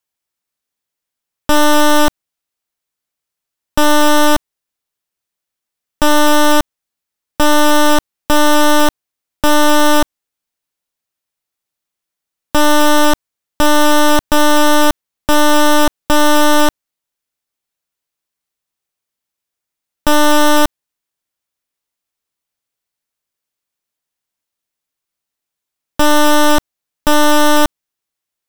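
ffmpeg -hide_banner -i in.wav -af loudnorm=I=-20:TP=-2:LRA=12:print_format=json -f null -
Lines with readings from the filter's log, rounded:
"input_i" : "-13.1",
"input_tp" : "-5.9",
"input_lra" : "5.1",
"input_thresh" : "-23.4",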